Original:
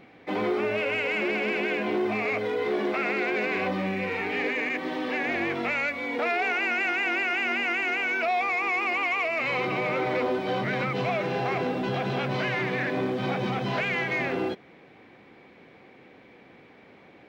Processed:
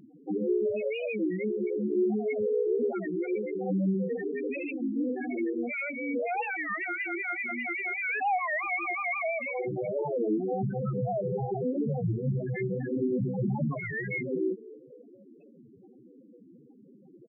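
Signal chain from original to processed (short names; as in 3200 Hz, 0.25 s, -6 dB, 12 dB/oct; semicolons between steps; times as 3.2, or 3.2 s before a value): high shelf 3800 Hz -2 dB; limiter -21 dBFS, peak gain reduction 5 dB; low shelf 430 Hz +7 dB; frequency-shifting echo 0.247 s, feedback 57%, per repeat +58 Hz, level -19 dB; loudest bins only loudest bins 4; record warp 33 1/3 rpm, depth 250 cents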